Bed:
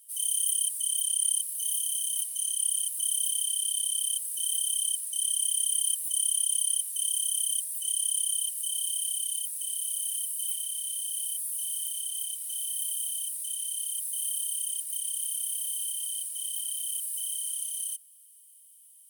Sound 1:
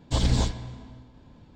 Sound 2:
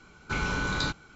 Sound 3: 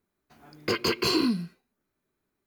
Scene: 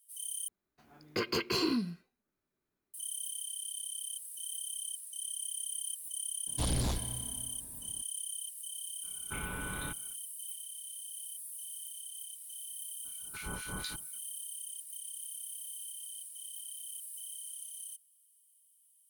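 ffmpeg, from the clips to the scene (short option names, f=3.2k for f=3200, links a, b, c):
-filter_complex "[2:a]asplit=2[a][b];[0:a]volume=-11.5dB[c];[1:a]asoftclip=type=hard:threshold=-23.5dB[d];[a]aresample=8000,aresample=44100[e];[b]acrossover=split=1600[f][g];[f]aeval=exprs='val(0)*(1-1/2+1/2*cos(2*PI*4.2*n/s))':c=same[h];[g]aeval=exprs='val(0)*(1-1/2-1/2*cos(2*PI*4.2*n/s))':c=same[i];[h][i]amix=inputs=2:normalize=0[j];[c]asplit=2[k][l];[k]atrim=end=0.484[m];[3:a]atrim=end=2.46,asetpts=PTS-STARTPTS,volume=-6.5dB[n];[l]atrim=start=2.936[o];[d]atrim=end=1.55,asetpts=PTS-STARTPTS,volume=-5dB,afade=t=in:d=0.004:c=hsin,afade=t=out:st=1.546:d=0.004:c=hsin,adelay=6470[p];[e]atrim=end=1.15,asetpts=PTS-STARTPTS,volume=-10.5dB,afade=t=in:d=0.05,afade=t=out:st=1.1:d=0.05,adelay=9010[q];[j]atrim=end=1.15,asetpts=PTS-STARTPTS,volume=-8dB,afade=t=in:d=0.02,afade=t=out:st=1.13:d=0.02,adelay=13040[r];[m][n]acrossfade=d=0.004:c1=hsin:c2=hsin[s];[s][o]acrossfade=d=0.004:c1=hsin:c2=hsin[t];[t][p][q][r]amix=inputs=4:normalize=0"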